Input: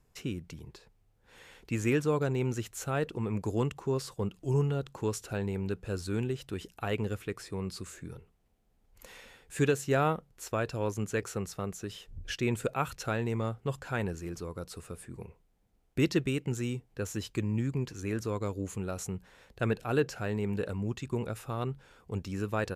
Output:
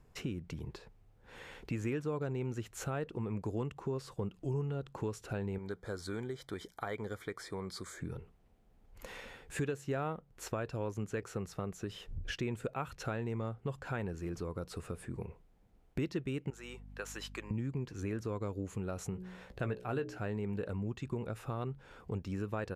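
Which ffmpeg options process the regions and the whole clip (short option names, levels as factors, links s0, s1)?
-filter_complex "[0:a]asettb=1/sr,asplit=3[s0][s1][s2];[s0]atrim=end=5.584[s3];[s1]atrim=start=5.58:end=8,asetpts=PTS-STARTPTS,afade=t=in:d=0.004:c=qsin,afade=t=out:st=2.416:d=0.004:c=qsin,asuperstop=centerf=2700:order=12:qfactor=4.2,lowshelf=f=370:g=-12[s4];[s2]atrim=start=7.996[s5];[s3][s4]acrossfade=d=0.004:c1=hsin:c2=qsin[s6];[s6][s5]acrossfade=d=0.004:c1=qsin:c2=hsin,asettb=1/sr,asplit=3[s7][s8][s9];[s7]atrim=end=16.504[s10];[s8]atrim=start=16.5:end=17.51,asetpts=PTS-STARTPTS,afade=t=in:d=0.004:c=qsin,afade=t=out:st=1.006:d=0.004:c=qsin,highpass=840,aeval=exprs='val(0)+0.00178*(sin(2*PI*50*n/s)+sin(2*PI*2*50*n/s)/2+sin(2*PI*3*50*n/s)/3+sin(2*PI*4*50*n/s)/4+sin(2*PI*5*50*n/s)/5)':c=same,adynamicequalizer=threshold=0.00141:dfrequency=1600:dqfactor=0.7:tfrequency=1600:tqfactor=0.7:attack=5:release=100:ratio=0.375:range=2:mode=cutabove:tftype=highshelf[s11];[s9]atrim=start=17.506[s12];[s10][s11]acrossfade=d=0.004:c1=hsin:c2=qsin[s13];[s13][s12]acrossfade=d=0.004:c1=qsin:c2=hsin,asettb=1/sr,asplit=3[s14][s15][s16];[s14]atrim=end=19.104[s17];[s15]atrim=start=19.1:end=20.18,asetpts=PTS-STARTPTS,afade=t=in:d=0.004:c=qsin,afade=t=out:st=1.076:d=0.004:c=qsin,asplit=2[s18][s19];[s19]adelay=16,volume=0.335[s20];[s18][s20]amix=inputs=2:normalize=0,atrim=end_sample=47628,bandreject=f=61.19:t=h:w=4,bandreject=f=122.38:t=h:w=4,bandreject=f=183.57:t=h:w=4,bandreject=f=244.76:t=h:w=4,bandreject=f=305.95:t=h:w=4,bandreject=f=367.14:t=h:w=4,bandreject=f=428.33:t=h:w=4,bandreject=f=489.52:t=h:w=4,bandreject=f=550.71:t=h:w=4,bandreject=f=611.9:t=h:w=4[s21];[s16]atrim=start=20.176[s22];[s17][s21]acrossfade=d=0.004:c1=hsin:c2=qsin[s23];[s23][s22]acrossfade=d=0.004:c1=qsin:c2=hsin,highshelf=f=3700:g=-10,acompressor=threshold=0.00708:ratio=3,volume=1.88"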